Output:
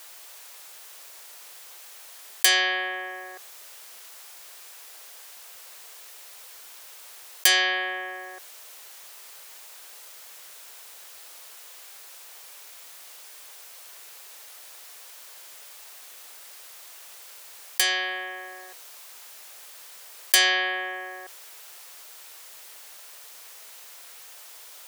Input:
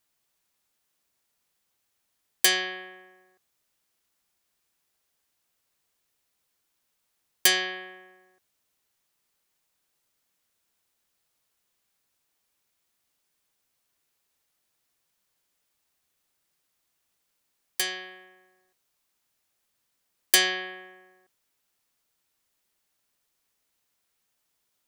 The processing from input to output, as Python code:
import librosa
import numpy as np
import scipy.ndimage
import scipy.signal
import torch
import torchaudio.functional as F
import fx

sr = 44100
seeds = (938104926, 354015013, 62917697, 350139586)

y = scipy.signal.sosfilt(scipy.signal.butter(4, 450.0, 'highpass', fs=sr, output='sos'), x)
y = fx.env_flatten(y, sr, amount_pct=50)